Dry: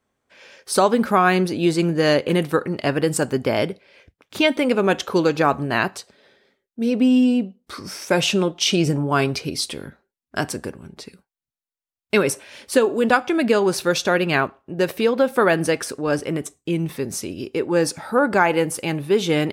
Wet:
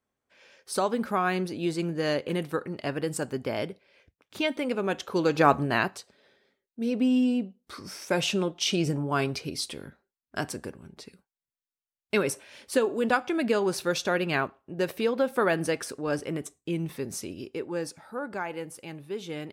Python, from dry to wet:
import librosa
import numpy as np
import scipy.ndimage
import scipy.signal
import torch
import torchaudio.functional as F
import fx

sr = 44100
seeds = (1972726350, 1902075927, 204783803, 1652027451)

y = fx.gain(x, sr, db=fx.line((5.07, -10.0), (5.5, -1.0), (5.98, -7.5), (17.31, -7.5), (18.07, -16.5)))